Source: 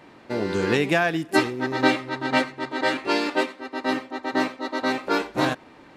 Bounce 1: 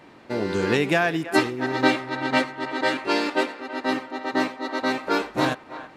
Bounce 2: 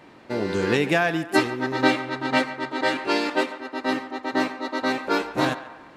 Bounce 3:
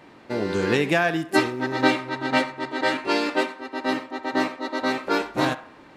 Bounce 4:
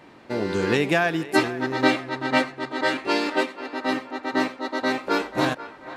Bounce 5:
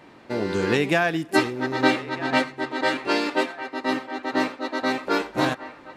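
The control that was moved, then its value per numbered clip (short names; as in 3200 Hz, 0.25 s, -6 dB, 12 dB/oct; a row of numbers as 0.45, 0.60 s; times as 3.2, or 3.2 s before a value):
narrowing echo, time: 325, 142, 65, 488, 1251 ms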